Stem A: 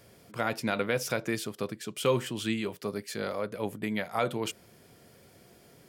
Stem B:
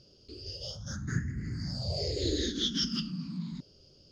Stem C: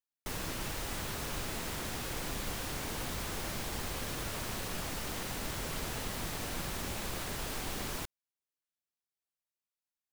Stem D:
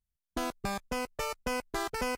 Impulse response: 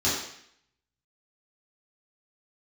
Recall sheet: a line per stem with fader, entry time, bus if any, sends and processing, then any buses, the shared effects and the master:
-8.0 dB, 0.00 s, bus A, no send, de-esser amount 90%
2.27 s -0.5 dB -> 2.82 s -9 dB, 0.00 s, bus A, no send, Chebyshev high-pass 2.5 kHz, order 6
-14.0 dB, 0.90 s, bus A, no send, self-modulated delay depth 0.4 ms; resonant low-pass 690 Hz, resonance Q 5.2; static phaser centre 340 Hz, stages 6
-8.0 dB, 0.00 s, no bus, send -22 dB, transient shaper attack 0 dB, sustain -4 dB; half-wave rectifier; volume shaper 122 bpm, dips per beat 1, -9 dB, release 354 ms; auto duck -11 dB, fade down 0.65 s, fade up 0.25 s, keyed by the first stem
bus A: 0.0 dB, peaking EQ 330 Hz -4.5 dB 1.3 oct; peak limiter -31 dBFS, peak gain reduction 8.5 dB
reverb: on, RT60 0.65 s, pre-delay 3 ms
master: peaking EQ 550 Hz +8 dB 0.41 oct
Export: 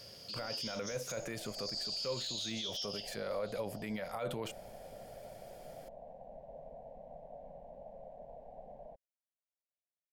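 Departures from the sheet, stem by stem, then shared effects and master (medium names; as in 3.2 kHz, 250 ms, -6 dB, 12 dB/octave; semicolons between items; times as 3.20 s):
stem A -8.0 dB -> -1.0 dB; stem B -0.5 dB -> +10.0 dB; stem D -8.0 dB -> -14.0 dB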